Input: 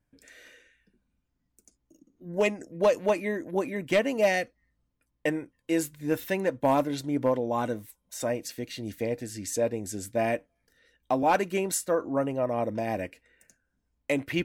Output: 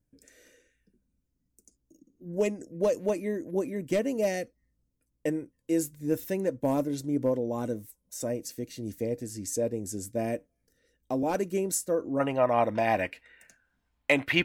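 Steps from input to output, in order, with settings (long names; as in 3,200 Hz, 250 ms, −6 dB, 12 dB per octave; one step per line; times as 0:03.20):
flat-topped bell 1,700 Hz −10 dB 2.9 octaves, from 0:12.19 +8 dB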